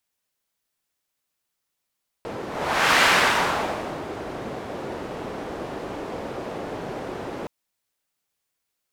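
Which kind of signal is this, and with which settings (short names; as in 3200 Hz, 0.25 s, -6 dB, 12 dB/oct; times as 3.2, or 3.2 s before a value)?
whoosh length 5.22 s, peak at 0.74, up 0.59 s, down 1.14 s, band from 470 Hz, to 1700 Hz, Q 0.95, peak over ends 15.5 dB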